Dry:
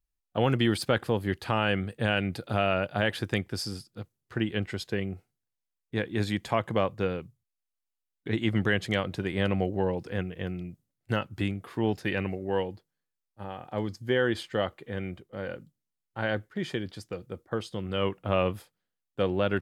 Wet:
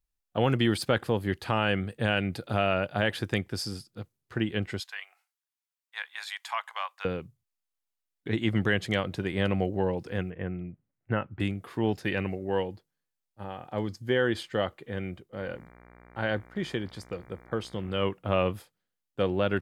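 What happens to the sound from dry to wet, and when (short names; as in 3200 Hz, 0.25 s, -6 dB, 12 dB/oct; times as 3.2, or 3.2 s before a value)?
4.8–7.05 steep high-pass 860 Hz
10.3–11.4 LPF 2300 Hz 24 dB/oct
15.38–18.03 buzz 60 Hz, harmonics 39, -54 dBFS -3 dB/oct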